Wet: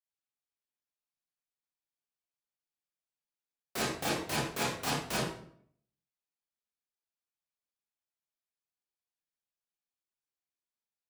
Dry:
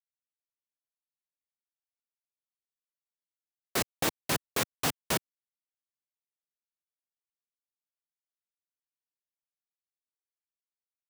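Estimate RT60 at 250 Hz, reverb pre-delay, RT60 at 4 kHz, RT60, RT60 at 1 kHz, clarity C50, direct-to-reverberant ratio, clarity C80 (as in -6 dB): 0.75 s, 24 ms, 0.45 s, 0.60 s, 0.55 s, 1.5 dB, -7.5 dB, 5.5 dB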